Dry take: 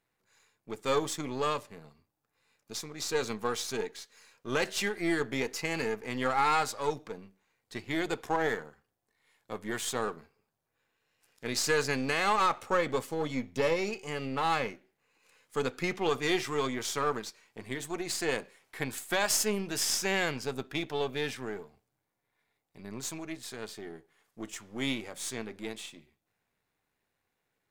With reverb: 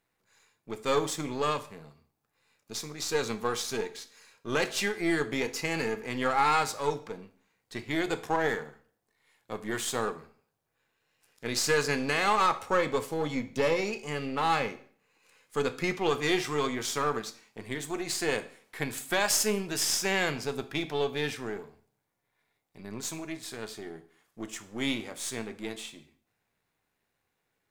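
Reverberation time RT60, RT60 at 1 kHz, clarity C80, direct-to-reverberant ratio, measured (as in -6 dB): 0.50 s, 0.50 s, 20.5 dB, 11.0 dB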